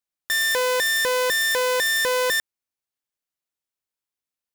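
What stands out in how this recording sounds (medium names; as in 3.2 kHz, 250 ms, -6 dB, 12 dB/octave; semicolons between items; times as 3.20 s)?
noise floor -90 dBFS; spectral tilt +0.5 dB/octave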